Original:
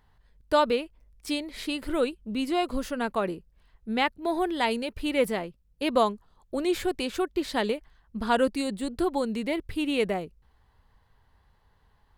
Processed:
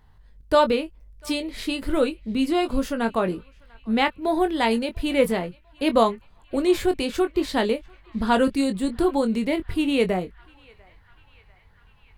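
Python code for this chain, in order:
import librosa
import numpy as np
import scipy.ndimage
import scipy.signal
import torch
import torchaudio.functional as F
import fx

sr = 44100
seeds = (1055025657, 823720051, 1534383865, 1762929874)

y = fx.low_shelf(x, sr, hz=300.0, db=5.5)
y = fx.doubler(y, sr, ms=22.0, db=-8.5)
y = fx.echo_banded(y, sr, ms=695, feedback_pct=75, hz=1900.0, wet_db=-23.5)
y = y * librosa.db_to_amplitude(2.5)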